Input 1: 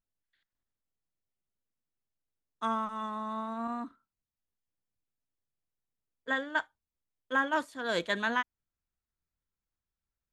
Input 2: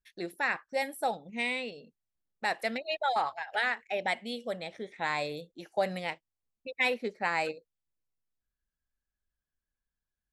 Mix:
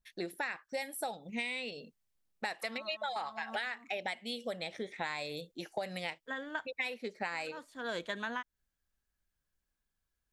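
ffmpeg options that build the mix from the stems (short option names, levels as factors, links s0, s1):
-filter_complex "[0:a]volume=0.944[s0];[1:a]adynamicequalizer=threshold=0.00794:dfrequency=1900:dqfactor=0.7:tfrequency=1900:tqfactor=0.7:attack=5:release=100:ratio=0.375:range=3:mode=boostabove:tftype=highshelf,volume=1.33,asplit=2[s1][s2];[s2]apad=whole_len=455296[s3];[s0][s3]sidechaincompress=threshold=0.0178:ratio=8:attack=16:release=491[s4];[s4][s1]amix=inputs=2:normalize=0,acompressor=threshold=0.02:ratio=10"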